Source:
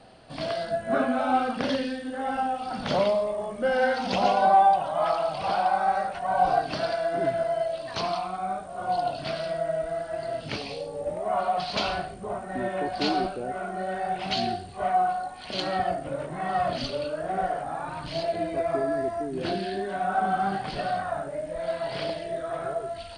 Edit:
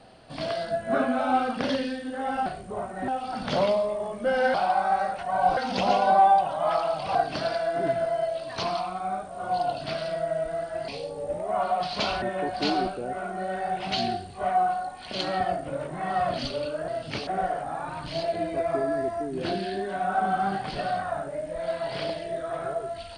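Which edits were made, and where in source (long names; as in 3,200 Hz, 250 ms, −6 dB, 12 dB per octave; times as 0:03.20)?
0:05.50–0:06.53: move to 0:03.92
0:10.26–0:10.65: move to 0:17.27
0:11.99–0:12.61: move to 0:02.46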